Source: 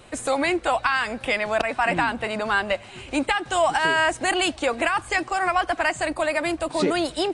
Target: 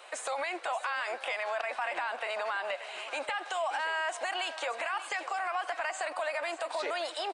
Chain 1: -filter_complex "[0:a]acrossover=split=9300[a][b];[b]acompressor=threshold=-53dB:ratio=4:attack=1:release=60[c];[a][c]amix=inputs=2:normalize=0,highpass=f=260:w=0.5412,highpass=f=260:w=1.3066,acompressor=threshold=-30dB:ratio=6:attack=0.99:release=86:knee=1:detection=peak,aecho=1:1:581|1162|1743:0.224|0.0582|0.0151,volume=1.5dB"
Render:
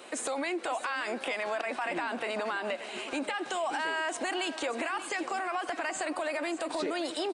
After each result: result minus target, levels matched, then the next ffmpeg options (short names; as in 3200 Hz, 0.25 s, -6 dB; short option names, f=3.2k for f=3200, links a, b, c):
250 Hz band +15.0 dB; 8000 Hz band +3.5 dB
-filter_complex "[0:a]acrossover=split=9300[a][b];[b]acompressor=threshold=-53dB:ratio=4:attack=1:release=60[c];[a][c]amix=inputs=2:normalize=0,highpass=f=590:w=0.5412,highpass=f=590:w=1.3066,acompressor=threshold=-30dB:ratio=6:attack=0.99:release=86:knee=1:detection=peak,aecho=1:1:581|1162|1743:0.224|0.0582|0.0151,volume=1.5dB"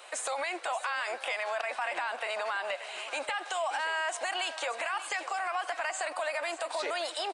8000 Hz band +4.0 dB
-filter_complex "[0:a]acrossover=split=9300[a][b];[b]acompressor=threshold=-53dB:ratio=4:attack=1:release=60[c];[a][c]amix=inputs=2:normalize=0,highpass=f=590:w=0.5412,highpass=f=590:w=1.3066,acompressor=threshold=-30dB:ratio=6:attack=0.99:release=86:knee=1:detection=peak,highshelf=f=5.3k:g=-7,aecho=1:1:581|1162|1743:0.224|0.0582|0.0151,volume=1.5dB"